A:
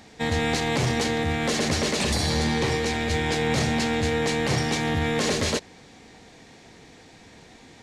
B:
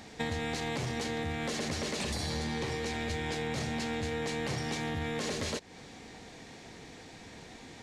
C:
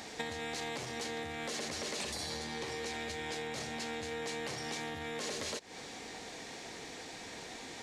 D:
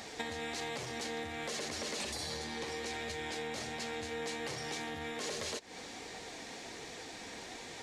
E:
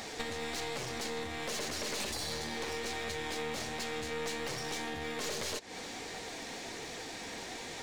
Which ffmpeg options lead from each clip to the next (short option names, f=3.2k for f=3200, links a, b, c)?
-af "acompressor=threshold=-32dB:ratio=6"
-af "acompressor=threshold=-39dB:ratio=6,bass=f=250:g=-10,treble=f=4k:g=3,volume=4dB"
-af "flanger=delay=1.5:depth=2.8:regen=-61:speed=1.3:shape=triangular,volume=4dB"
-af "aeval=exprs='clip(val(0),-1,0.00562)':c=same,volume=4.5dB"